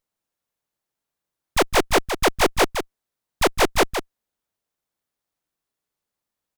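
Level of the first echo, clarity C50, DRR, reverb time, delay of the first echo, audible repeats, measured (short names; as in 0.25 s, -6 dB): -7.5 dB, none, none, none, 0.162 s, 1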